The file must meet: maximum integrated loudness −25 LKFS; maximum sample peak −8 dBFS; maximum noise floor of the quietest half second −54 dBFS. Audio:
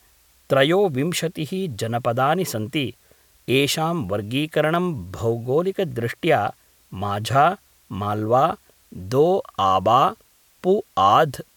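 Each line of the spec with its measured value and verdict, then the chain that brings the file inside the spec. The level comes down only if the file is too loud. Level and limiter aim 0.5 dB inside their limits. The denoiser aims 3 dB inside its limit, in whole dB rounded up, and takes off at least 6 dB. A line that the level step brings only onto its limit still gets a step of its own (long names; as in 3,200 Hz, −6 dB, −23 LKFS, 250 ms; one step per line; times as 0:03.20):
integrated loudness −21.0 LKFS: out of spec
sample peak −5.0 dBFS: out of spec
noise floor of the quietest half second −57 dBFS: in spec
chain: level −4.5 dB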